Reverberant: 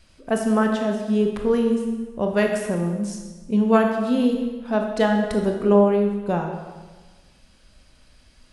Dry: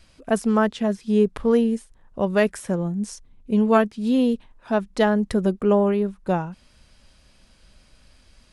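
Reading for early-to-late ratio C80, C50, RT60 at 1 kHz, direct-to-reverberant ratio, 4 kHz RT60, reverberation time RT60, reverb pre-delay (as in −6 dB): 6.5 dB, 5.0 dB, 1.3 s, 2.5 dB, 1.1 s, 1.3 s, 19 ms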